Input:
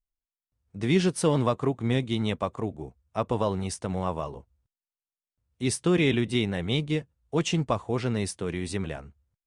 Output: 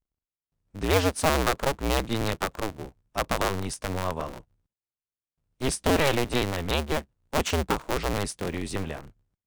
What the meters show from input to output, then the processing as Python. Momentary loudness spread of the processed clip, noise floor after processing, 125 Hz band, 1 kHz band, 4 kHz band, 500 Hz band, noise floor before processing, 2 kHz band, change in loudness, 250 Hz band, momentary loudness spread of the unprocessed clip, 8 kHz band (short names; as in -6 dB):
11 LU, under -85 dBFS, -3.0 dB, +4.5 dB, +2.5 dB, +0.5 dB, under -85 dBFS, +4.5 dB, 0.0 dB, -4.0 dB, 11 LU, +3.0 dB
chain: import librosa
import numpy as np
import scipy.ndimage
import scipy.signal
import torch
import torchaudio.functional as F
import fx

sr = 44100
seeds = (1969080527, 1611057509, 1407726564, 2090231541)

y = fx.cycle_switch(x, sr, every=2, mode='inverted')